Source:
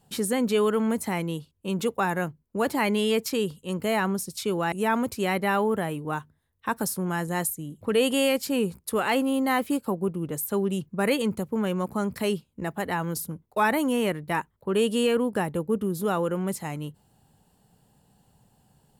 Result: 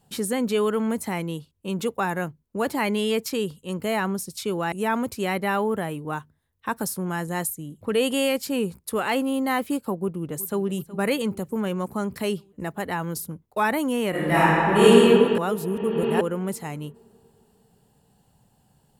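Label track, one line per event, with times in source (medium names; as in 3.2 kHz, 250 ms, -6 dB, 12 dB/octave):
9.930000	10.670000	echo throw 370 ms, feedback 65%, level -17 dB
14.100000	14.870000	reverb throw, RT60 3 s, DRR -12 dB
15.380000	16.210000	reverse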